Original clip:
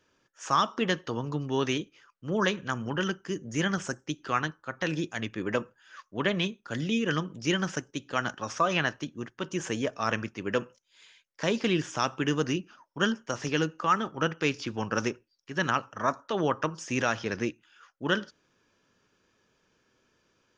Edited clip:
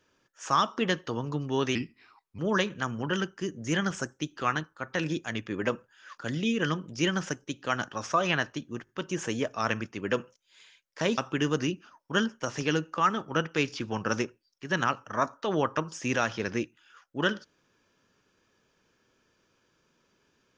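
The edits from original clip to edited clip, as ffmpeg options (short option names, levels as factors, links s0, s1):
-filter_complex "[0:a]asplit=7[s0][s1][s2][s3][s4][s5][s6];[s0]atrim=end=1.754[s7];[s1]atrim=start=1.75:end=2.26,asetpts=PTS-STARTPTS,asetrate=35280,aresample=44100[s8];[s2]atrim=start=2.256:end=6.052[s9];[s3]atrim=start=6.638:end=9.332[s10];[s4]atrim=start=9.308:end=9.332[s11];[s5]atrim=start=9.308:end=11.602[s12];[s6]atrim=start=12.038[s13];[s7][s8]acrossfade=d=0.004:c1=hsin:c2=hsin[s14];[s14][s9]acrossfade=d=0.004:c1=hsin:c2=hsin[s15];[s15][s10]acrossfade=d=0.004:c1=hsin:c2=hsin[s16];[s16][s11]acrossfade=d=0.004:c1=hsin:c2=hsin[s17];[s17][s12]acrossfade=d=0.004:c1=hsin:c2=hsin[s18];[s18][s13]acrossfade=d=0.004:c1=hsin:c2=hsin"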